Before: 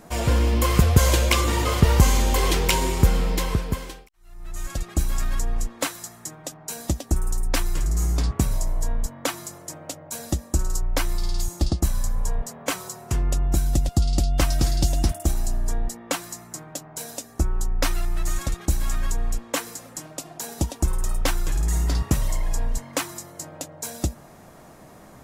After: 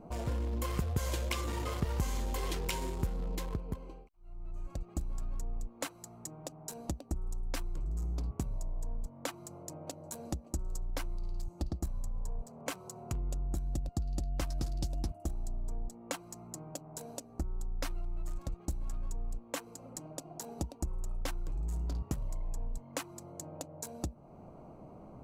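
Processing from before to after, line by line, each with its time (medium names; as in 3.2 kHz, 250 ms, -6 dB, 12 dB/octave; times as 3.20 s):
9.30–10.32 s: echo throw 570 ms, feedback 75%, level -12.5 dB
whole clip: local Wiener filter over 25 samples; compression 2:1, threshold -39 dBFS; trim -2.5 dB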